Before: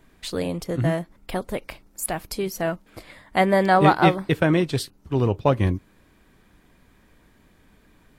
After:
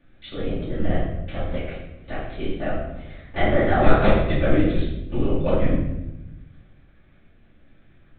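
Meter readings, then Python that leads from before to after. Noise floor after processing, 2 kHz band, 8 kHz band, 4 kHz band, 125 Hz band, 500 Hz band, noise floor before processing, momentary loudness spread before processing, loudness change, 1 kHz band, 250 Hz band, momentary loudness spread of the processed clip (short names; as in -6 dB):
-55 dBFS, -2.0 dB, under -40 dB, -4.5 dB, -1.0 dB, -0.5 dB, -58 dBFS, 15 LU, -1.5 dB, -5.5 dB, -0.5 dB, 17 LU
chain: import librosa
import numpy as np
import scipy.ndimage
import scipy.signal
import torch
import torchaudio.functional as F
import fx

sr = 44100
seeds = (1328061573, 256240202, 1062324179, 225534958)

y = fx.lpc_vocoder(x, sr, seeds[0], excitation='whisper', order=10)
y = fx.peak_eq(y, sr, hz=940.0, db=-11.0, octaves=0.31)
y = fx.room_shoebox(y, sr, seeds[1], volume_m3=370.0, walls='mixed', distance_m=2.5)
y = y * librosa.db_to_amplitude(-8.0)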